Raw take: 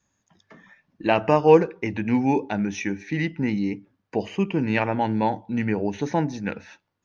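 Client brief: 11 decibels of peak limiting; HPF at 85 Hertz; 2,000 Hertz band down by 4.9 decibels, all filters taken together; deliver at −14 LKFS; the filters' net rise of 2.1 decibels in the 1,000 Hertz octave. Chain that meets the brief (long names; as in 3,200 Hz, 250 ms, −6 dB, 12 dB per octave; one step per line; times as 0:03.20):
high-pass filter 85 Hz
parametric band 1,000 Hz +4 dB
parametric band 2,000 Hz −7.5 dB
level +12 dB
brickwall limiter −1 dBFS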